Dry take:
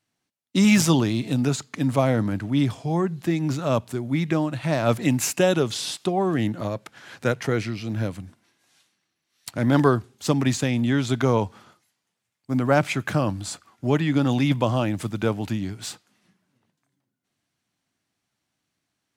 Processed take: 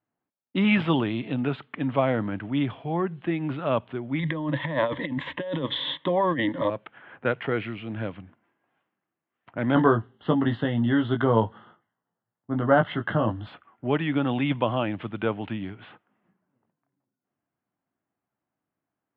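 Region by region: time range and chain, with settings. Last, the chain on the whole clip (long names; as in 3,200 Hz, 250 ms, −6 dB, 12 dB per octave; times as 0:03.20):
0:04.19–0:06.70: EQ curve with evenly spaced ripples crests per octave 1.1, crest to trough 16 dB + compressor whose output falls as the input rises −23 dBFS
0:09.75–0:13.47: Butterworth band-reject 2,400 Hz, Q 2.8 + bass and treble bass +4 dB, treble −5 dB + double-tracking delay 18 ms −5 dB
whole clip: elliptic low-pass filter 3,200 Hz, stop band 50 dB; low-pass that shuts in the quiet parts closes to 1,100 Hz, open at −21 dBFS; low-shelf EQ 180 Hz −9 dB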